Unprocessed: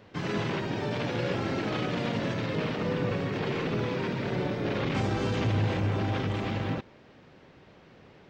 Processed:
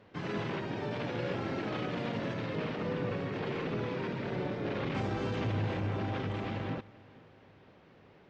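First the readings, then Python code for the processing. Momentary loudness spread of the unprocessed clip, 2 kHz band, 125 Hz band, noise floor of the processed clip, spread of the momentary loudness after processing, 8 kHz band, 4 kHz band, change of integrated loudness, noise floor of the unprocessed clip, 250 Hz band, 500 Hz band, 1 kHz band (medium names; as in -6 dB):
3 LU, -5.5 dB, -6.0 dB, -59 dBFS, 3 LU, no reading, -7.0 dB, -5.0 dB, -55 dBFS, -5.0 dB, -4.5 dB, -4.5 dB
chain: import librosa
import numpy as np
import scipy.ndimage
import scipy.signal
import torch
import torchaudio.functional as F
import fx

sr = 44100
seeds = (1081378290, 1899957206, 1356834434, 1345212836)

y = fx.lowpass(x, sr, hz=3300.0, slope=6)
y = fx.low_shelf(y, sr, hz=180.0, db=-3.0)
y = fx.echo_feedback(y, sr, ms=477, feedback_pct=50, wet_db=-23.0)
y = y * 10.0 ** (-4.0 / 20.0)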